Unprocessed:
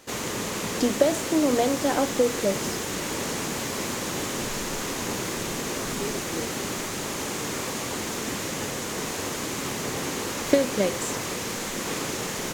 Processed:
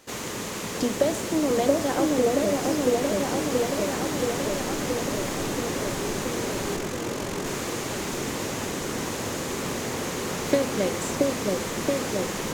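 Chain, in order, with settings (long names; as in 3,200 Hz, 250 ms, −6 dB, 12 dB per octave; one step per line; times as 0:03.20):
0:06.76–0:07.46: amplitude modulation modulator 45 Hz, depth 90%
echo whose low-pass opens from repeat to repeat 677 ms, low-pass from 750 Hz, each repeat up 1 octave, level 0 dB
level −2.5 dB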